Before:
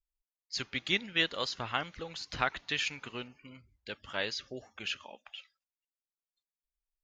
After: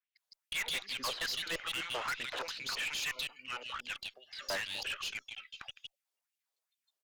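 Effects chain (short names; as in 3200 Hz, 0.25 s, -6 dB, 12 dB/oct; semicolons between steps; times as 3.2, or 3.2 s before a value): slices in reverse order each 0.173 s, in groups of 3; LFO high-pass sine 2.4 Hz 460–3100 Hz; three bands offset in time mids, highs, lows 0.16/0.25 s, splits 280/3100 Hz; tube stage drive 39 dB, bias 0.25; gain +6.5 dB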